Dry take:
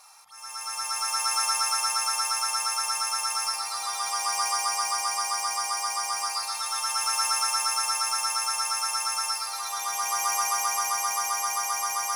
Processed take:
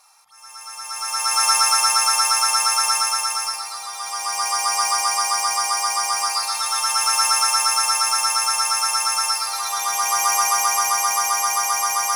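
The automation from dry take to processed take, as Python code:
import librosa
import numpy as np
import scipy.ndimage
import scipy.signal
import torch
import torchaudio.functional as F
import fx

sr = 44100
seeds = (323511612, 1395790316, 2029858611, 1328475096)

y = fx.gain(x, sr, db=fx.line((0.81, -2.0), (1.5, 9.0), (2.93, 9.0), (3.9, -1.0), (4.83, 7.5)))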